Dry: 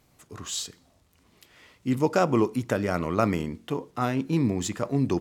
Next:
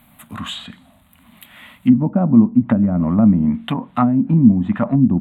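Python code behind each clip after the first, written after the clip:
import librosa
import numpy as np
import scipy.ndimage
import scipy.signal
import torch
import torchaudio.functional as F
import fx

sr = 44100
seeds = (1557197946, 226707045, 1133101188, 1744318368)

y = fx.env_lowpass_down(x, sr, base_hz=370.0, full_db=-22.0)
y = fx.curve_eq(y, sr, hz=(130.0, 230.0, 410.0, 610.0, 950.0, 3700.0, 5400.0, 8000.0, 12000.0), db=(0, 12, -17, 3, 5, 5, -26, -1, 11))
y = y * 10.0 ** (8.0 / 20.0)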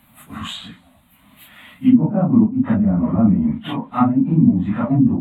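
y = fx.phase_scramble(x, sr, seeds[0], window_ms=100)
y = y * 10.0 ** (-1.0 / 20.0)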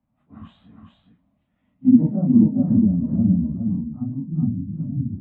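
y = fx.filter_sweep_lowpass(x, sr, from_hz=660.0, to_hz=130.0, start_s=0.81, end_s=4.59, q=0.79)
y = y + 10.0 ** (-4.0 / 20.0) * np.pad(y, (int(414 * sr / 1000.0), 0))[:len(y)]
y = fx.band_widen(y, sr, depth_pct=40)
y = y * 10.0 ** (-3.0 / 20.0)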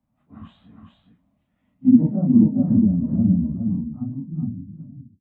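y = fx.fade_out_tail(x, sr, length_s=1.33)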